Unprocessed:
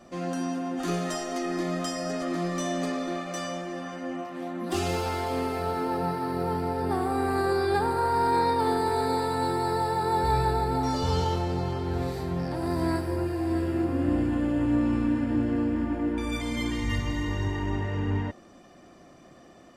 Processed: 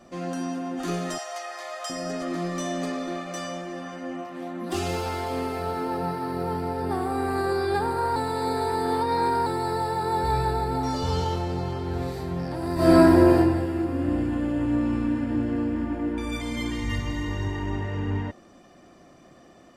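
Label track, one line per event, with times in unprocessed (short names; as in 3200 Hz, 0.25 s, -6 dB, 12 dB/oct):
1.180000	1.900000	steep high-pass 570 Hz
8.160000	9.460000	reverse
12.740000	13.360000	reverb throw, RT60 1.2 s, DRR -11.5 dB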